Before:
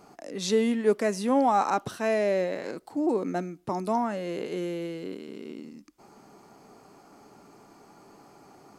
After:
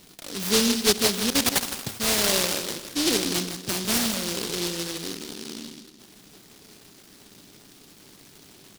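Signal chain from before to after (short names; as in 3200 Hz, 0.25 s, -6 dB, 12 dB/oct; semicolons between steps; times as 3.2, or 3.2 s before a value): low shelf 93 Hz +6 dB; 1.3–1.8 level quantiser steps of 21 dB; feedback echo 0.163 s, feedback 40%, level -10 dB; spring tank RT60 1.7 s, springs 31/51 ms, chirp 70 ms, DRR 12.5 dB; noise-modulated delay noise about 4200 Hz, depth 0.39 ms; gain +1.5 dB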